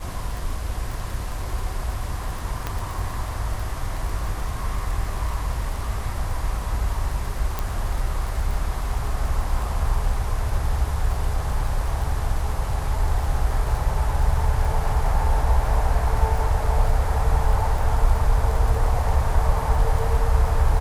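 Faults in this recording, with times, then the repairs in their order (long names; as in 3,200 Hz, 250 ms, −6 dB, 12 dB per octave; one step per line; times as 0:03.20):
surface crackle 26 per second −28 dBFS
0:02.67: click −12 dBFS
0:07.59: click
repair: click removal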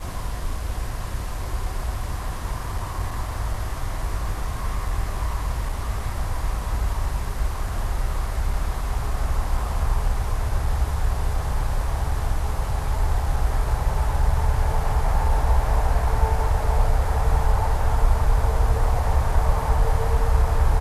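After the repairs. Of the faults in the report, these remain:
none of them is left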